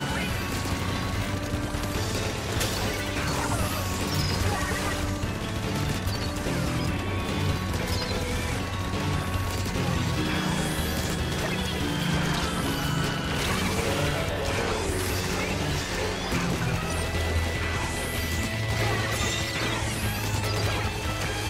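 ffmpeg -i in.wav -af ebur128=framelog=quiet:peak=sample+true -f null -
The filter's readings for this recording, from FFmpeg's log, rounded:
Integrated loudness:
  I:         -27.5 LUFS
  Threshold: -37.5 LUFS
Loudness range:
  LRA:         1.7 LU
  Threshold: -47.4 LUFS
  LRA low:   -28.2 LUFS
  LRA high:  -26.6 LUFS
Sample peak:
  Peak:      -13.1 dBFS
True peak:
  Peak:      -13.1 dBFS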